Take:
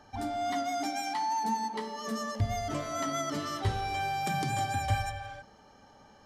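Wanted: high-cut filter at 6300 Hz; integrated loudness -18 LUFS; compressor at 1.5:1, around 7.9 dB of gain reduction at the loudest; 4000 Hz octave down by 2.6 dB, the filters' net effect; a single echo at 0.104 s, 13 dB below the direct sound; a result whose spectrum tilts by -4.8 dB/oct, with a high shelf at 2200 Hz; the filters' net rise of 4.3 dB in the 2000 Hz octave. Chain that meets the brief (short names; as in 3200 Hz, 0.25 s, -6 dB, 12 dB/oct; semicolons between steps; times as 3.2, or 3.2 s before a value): LPF 6300 Hz; bell 2000 Hz +5.5 dB; high shelf 2200 Hz +3.5 dB; bell 4000 Hz -8 dB; compressor 1.5:1, threshold -46 dBFS; echo 0.104 s -13 dB; gain +19.5 dB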